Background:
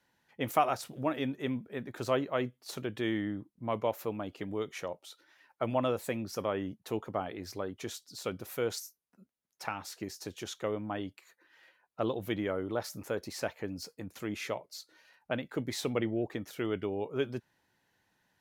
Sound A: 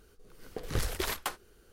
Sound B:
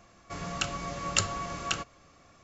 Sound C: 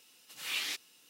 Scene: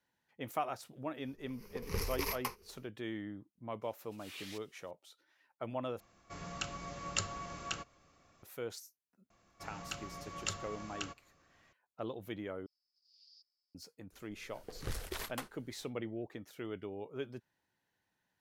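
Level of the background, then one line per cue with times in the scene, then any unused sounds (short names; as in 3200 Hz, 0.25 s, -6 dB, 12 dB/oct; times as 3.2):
background -9 dB
1.19 add A -6.5 dB, fades 0.10 s + ripple EQ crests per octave 0.83, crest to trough 13 dB
3.82 add C -13.5 dB
6 replace with B -8.5 dB
9.3 add B -11.5 dB
12.66 replace with C -14.5 dB + Butterworth band-pass 4900 Hz, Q 7.8
14.12 add A -8.5 dB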